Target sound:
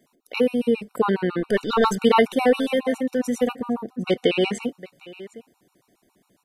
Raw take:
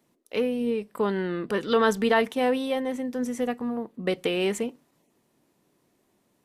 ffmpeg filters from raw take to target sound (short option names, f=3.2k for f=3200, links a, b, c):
-filter_complex "[0:a]asettb=1/sr,asplit=3[a][b][c];[a]atrim=end=1.404[d];[b]atrim=start=1.4:end=1.96,asetpts=PTS-STARTPTS,afade=t=in:d=0.004:c=qsin,afade=t=out:st=0.556:d=0.004:c=qsin,aeval=exprs='if(lt(val(0),0),0.708*val(0),val(0))':c=same[e];[c]atrim=start=1.956[f];[d][e]acrossfade=d=0.004:c1=hsin:c2=qsin[g];[g][f]acrossfade=d=0.004:c1=qsin:c2=hsin,asettb=1/sr,asplit=3[h][i][j];[h]atrim=end=4.044[k];[i]atrim=start=4.04:end=4.63,asetpts=PTS-STARTPTS,afade=t=in:d=0.004:c=qsin,afade=t=out:st=0.586:d=0.004:c=qsin,lowpass=6.4k[l];[j]atrim=start=4.626[m];[k][l]acrossfade=d=0.004:c1=hsin:c2=qsin[n];[n][m]acrossfade=d=0.004:c1=qsin:c2=hsin,asplit=2[o][p];[p]aecho=0:1:757:0.106[q];[o][q]amix=inputs=2:normalize=0,afftfilt=real='re*gt(sin(2*PI*7.3*pts/sr)*(1-2*mod(floor(b*sr/1024/740),2)),0)':imag='im*gt(sin(2*PI*7.3*pts/sr)*(1-2*mod(floor(b*sr/1024/740),2)),0)':win_size=1024:overlap=0.75,volume=8dB"